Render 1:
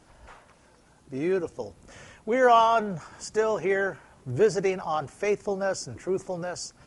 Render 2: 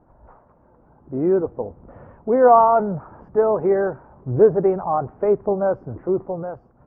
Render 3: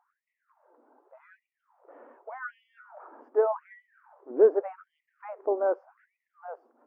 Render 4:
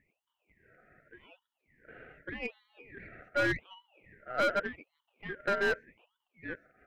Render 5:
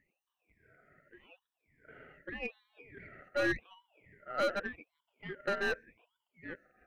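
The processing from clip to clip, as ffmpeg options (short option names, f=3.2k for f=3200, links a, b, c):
-af "lowpass=f=1.1k:w=0.5412,lowpass=f=1.1k:w=1.3066,dynaudnorm=f=230:g=7:m=6dB,volume=2dB"
-af "afftfilt=real='re*gte(b*sr/1024,220*pow(1900/220,0.5+0.5*sin(2*PI*0.85*pts/sr)))':imag='im*gte(b*sr/1024,220*pow(1900/220,0.5+0.5*sin(2*PI*0.85*pts/sr)))':win_size=1024:overlap=0.75,volume=-5.5dB"
-af "asoftclip=type=hard:threshold=-25dB,aeval=exprs='val(0)*sin(2*PI*1000*n/s)':c=same,aeval=exprs='0.0562*(cos(1*acos(clip(val(0)/0.0562,-1,1)))-cos(1*PI/2))+0.00501*(cos(4*acos(clip(val(0)/0.0562,-1,1)))-cos(4*PI/2))':c=same,volume=2.5dB"
-af "afftfilt=real='re*pow(10,9/40*sin(2*PI*(1.7*log(max(b,1)*sr/1024/100)/log(2)-(-0.92)*(pts-256)/sr)))':imag='im*pow(10,9/40*sin(2*PI*(1.7*log(max(b,1)*sr/1024/100)/log(2)-(-0.92)*(pts-256)/sr)))':win_size=1024:overlap=0.75,volume=-3.5dB"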